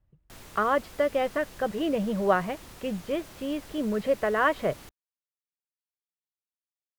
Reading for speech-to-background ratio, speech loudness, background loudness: 19.0 dB, -28.0 LUFS, -47.0 LUFS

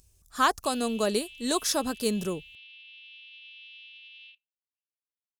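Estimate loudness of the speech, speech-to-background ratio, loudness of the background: -28.0 LUFS, 18.0 dB, -46.0 LUFS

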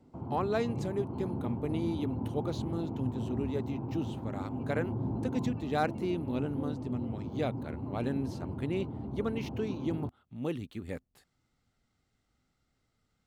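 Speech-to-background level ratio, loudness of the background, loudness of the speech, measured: 1.5 dB, -38.0 LUFS, -36.5 LUFS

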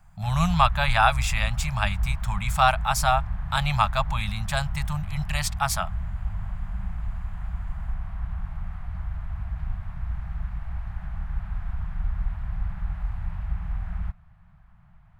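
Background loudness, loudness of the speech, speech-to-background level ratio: -33.0 LUFS, -25.5 LUFS, 7.5 dB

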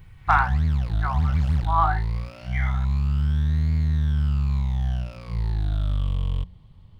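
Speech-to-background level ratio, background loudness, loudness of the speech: -1.0 dB, -25.5 LUFS, -26.5 LUFS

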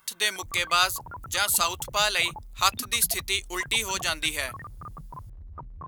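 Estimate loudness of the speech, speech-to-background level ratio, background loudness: -25.0 LUFS, 17.5 dB, -42.5 LUFS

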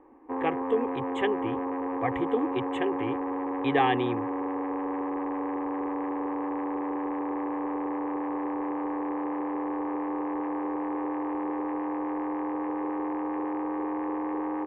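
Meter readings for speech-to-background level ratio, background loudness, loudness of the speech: 1.0 dB, -31.5 LUFS, -30.5 LUFS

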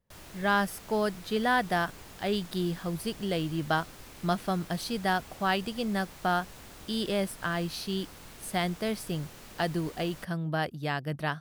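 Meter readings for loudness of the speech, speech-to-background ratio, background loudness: -31.0 LUFS, 17.0 dB, -48.0 LUFS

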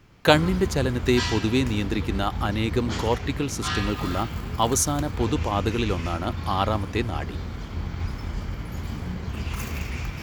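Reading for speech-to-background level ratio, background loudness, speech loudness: 6.0 dB, -31.5 LUFS, -25.5 LUFS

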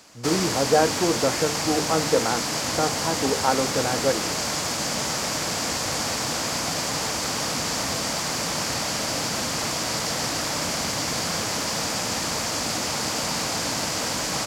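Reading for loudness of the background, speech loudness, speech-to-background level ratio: -25.0 LUFS, -25.5 LUFS, -0.5 dB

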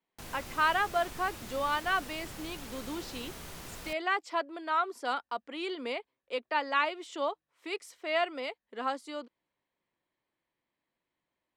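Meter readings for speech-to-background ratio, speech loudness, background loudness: 11.0 dB, -33.5 LUFS, -44.5 LUFS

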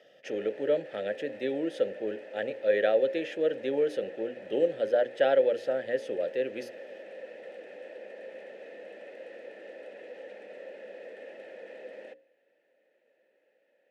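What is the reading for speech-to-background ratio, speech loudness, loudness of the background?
15.5 dB, -29.5 LUFS, -45.0 LUFS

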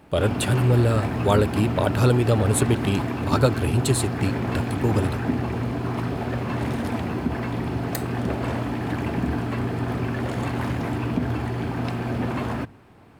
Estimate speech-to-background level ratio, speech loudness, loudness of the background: 4.0 dB, -23.0 LUFS, -27.0 LUFS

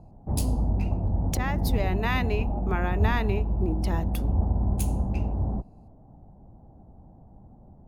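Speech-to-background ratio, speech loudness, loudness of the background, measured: -4.5 dB, -32.5 LUFS, -28.0 LUFS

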